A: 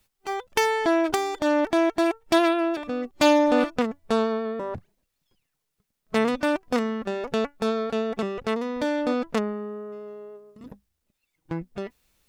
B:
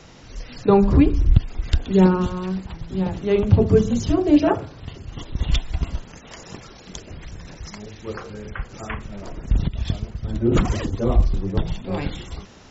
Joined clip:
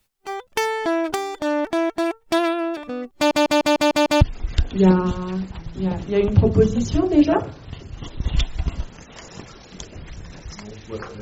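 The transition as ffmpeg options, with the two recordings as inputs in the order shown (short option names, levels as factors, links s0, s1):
-filter_complex "[0:a]apad=whole_dur=11.21,atrim=end=11.21,asplit=7[s0][s1][s2][s3][s4][s5][s6];[s0]atrim=end=3.312[s7];[s1]atrim=start=3.158:end=3.312[s8];[s2]atrim=start=3.158:end=3.312[s9];[s3]atrim=start=3.158:end=3.312[s10];[s4]atrim=start=3.158:end=3.312[s11];[s5]atrim=start=3.158:end=3.312[s12];[s6]atrim=start=3.158:end=3.312[s13];[1:a]atrim=start=1.358:end=8.36[s14];[s7][s8]acrossfade=d=0.004:c1=hsin:c2=hsin[s15];[s15][s9]acrossfade=d=0.004:c1=hsin:c2=hsin[s16];[s16][s10]acrossfade=d=0.004:c1=hsin:c2=hsin[s17];[s17][s11]acrossfade=d=0.004:c1=hsin:c2=hsin[s18];[s18][s12]acrossfade=d=0.004:c1=hsin:c2=hsin[s19];[s19][s13]acrossfade=d=0.004:c1=hsin:c2=hsin[s20];[s20][s14]acrossfade=d=0.004:c1=hsin:c2=hsin"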